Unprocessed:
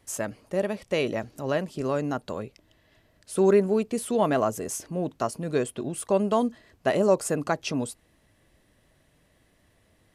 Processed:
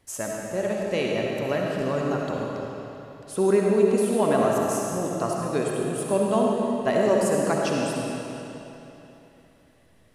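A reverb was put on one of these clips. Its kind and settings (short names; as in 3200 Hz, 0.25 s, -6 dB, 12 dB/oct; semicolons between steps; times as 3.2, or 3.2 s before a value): digital reverb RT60 3.2 s, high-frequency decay 0.9×, pre-delay 25 ms, DRR -2 dB; gain -1.5 dB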